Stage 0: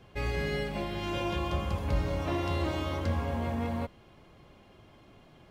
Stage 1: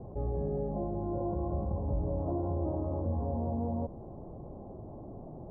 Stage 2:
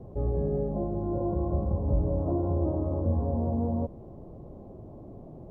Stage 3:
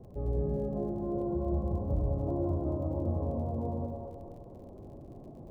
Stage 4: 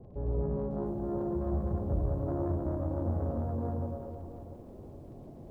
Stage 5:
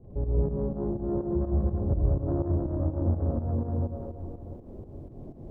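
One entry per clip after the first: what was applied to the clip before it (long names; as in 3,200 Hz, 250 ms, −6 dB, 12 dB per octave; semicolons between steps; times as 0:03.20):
Butterworth low-pass 840 Hz 36 dB per octave; envelope flattener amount 50%; level −4.5 dB
parametric band 820 Hz −5.5 dB 0.52 octaves; background noise brown −68 dBFS; expander for the loud parts 1.5 to 1, over −42 dBFS; level +7.5 dB
reversed playback; upward compression, threshold −39 dBFS; reversed playback; surface crackle 21 per second −45 dBFS; echo with a time of its own for lows and highs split 450 Hz, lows 100 ms, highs 231 ms, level −3 dB; level −6 dB
phase distortion by the signal itself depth 0.29 ms; high-frequency loss of the air 290 metres; feedback echo at a low word length 701 ms, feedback 35%, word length 10 bits, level −14.5 dB
parametric band 360 Hz +2.5 dB 0.77 octaves; fake sidechain pumping 124 BPM, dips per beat 2, −11 dB, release 180 ms; spectral tilt −2 dB per octave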